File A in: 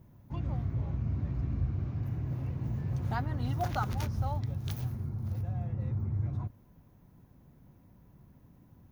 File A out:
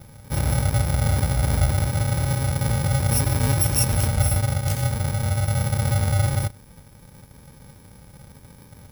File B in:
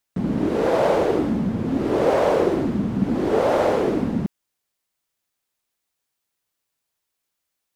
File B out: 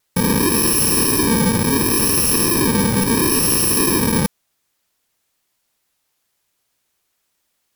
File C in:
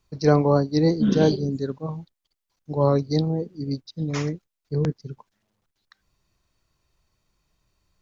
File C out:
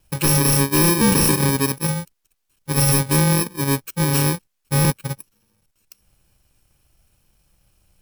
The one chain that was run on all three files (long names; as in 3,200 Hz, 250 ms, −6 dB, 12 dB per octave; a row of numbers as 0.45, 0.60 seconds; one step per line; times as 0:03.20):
samples in bit-reversed order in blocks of 64 samples
sine wavefolder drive 12 dB, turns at −5 dBFS
pitch vibrato 0.6 Hz 7 cents
normalise the peak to −9 dBFS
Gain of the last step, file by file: −3.5, −6.0, −6.0 decibels